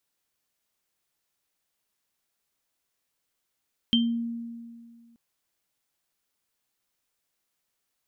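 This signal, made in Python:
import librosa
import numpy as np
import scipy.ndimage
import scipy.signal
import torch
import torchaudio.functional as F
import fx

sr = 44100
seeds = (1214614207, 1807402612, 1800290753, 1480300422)

y = fx.additive_free(sr, length_s=1.23, hz=233.0, level_db=-19.0, upper_db=(2,), decay_s=2.04, upper_decays_s=(0.27,), upper_hz=(3140.0,))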